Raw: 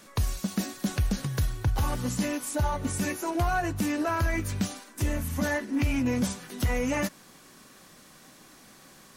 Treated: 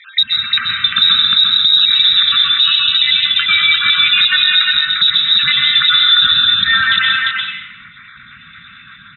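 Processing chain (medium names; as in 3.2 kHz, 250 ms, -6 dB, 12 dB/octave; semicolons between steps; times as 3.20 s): random holes in the spectrogram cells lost 58%; compression 6:1, threshold -30 dBFS, peak gain reduction 9 dB; fifteen-band graphic EQ 250 Hz +3 dB, 630 Hz -12 dB, 2.5 kHz +10 dB; frequency inversion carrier 3.8 kHz; inverse Chebyshev band-stop 350–910 Hz, stop band 40 dB; level-controlled noise filter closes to 1.8 kHz, open at -31.5 dBFS; high-pass 80 Hz; delay 348 ms -3.5 dB; plate-style reverb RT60 0.79 s, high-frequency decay 0.8×, pre-delay 110 ms, DRR 0 dB; dynamic bell 2.1 kHz, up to -5 dB, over -49 dBFS, Q 7.7; loudness maximiser +21.5 dB; trim -1 dB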